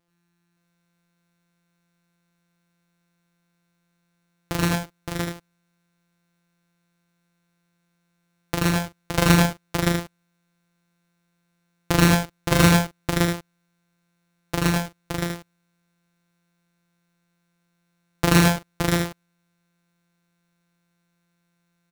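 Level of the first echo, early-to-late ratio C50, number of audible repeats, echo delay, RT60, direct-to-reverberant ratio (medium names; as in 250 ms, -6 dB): -2.5 dB, no reverb, 4, 82 ms, no reverb, no reverb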